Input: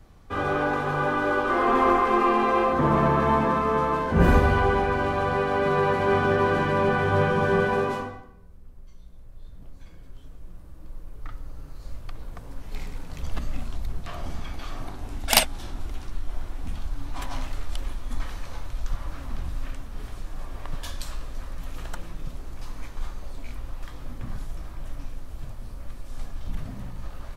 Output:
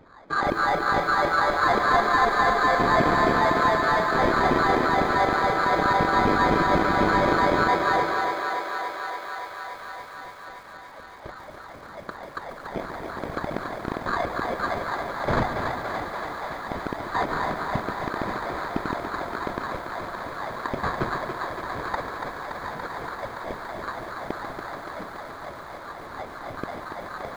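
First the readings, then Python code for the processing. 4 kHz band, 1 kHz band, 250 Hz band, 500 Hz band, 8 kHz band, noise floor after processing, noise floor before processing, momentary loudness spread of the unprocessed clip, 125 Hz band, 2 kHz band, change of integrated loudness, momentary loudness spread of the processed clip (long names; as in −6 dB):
−0.5 dB, +3.5 dB, 0.0 dB, 0.0 dB, −8.5 dB, −42 dBFS, −43 dBFS, 21 LU, −5.0 dB, +4.5 dB, −0.5 dB, 17 LU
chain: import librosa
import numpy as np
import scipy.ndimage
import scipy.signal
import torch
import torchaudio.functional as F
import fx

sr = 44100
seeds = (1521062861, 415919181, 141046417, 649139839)

p1 = fx.rattle_buzz(x, sr, strikes_db=-26.0, level_db=-8.0)
p2 = scipy.signal.sosfilt(scipy.signal.butter(4, 120.0, 'highpass', fs=sr, output='sos'), p1)
p3 = fx.high_shelf(p2, sr, hz=5100.0, db=10.0)
p4 = fx.notch(p3, sr, hz=2000.0, q=6.8)
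p5 = fx.over_compress(p4, sr, threshold_db=-33.0, ratio=-1.0)
p6 = p4 + (p5 * 10.0 ** (1.0 / 20.0))
p7 = fx.filter_lfo_highpass(p6, sr, shape='saw_down', hz=4.0, low_hz=560.0, high_hz=2800.0, q=6.2)
p8 = fx.sample_hold(p7, sr, seeds[0], rate_hz=2800.0, jitter_pct=0)
p9 = np.clip(p8, -10.0 ** (-12.0 / 20.0), 10.0 ** (-12.0 / 20.0))
p10 = fx.spacing_loss(p9, sr, db_at_10k=31)
p11 = p10 + fx.echo_thinned(p10, sr, ms=285, feedback_pct=83, hz=290.0, wet_db=-5.5, dry=0)
p12 = fx.echo_crushed(p11, sr, ms=141, feedback_pct=55, bits=7, wet_db=-11.0)
y = p12 * 10.0 ** (-3.0 / 20.0)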